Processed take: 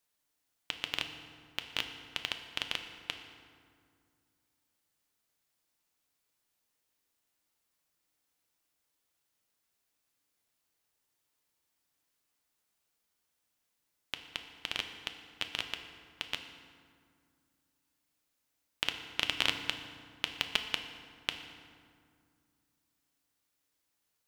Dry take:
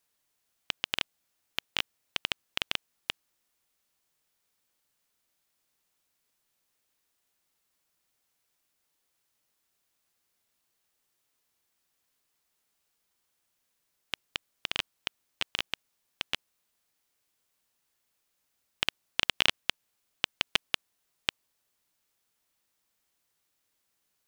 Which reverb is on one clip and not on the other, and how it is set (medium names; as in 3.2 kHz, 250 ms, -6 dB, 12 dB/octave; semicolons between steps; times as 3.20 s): FDN reverb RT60 2.1 s, low-frequency decay 1.4×, high-frequency decay 0.6×, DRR 5.5 dB; trim -4 dB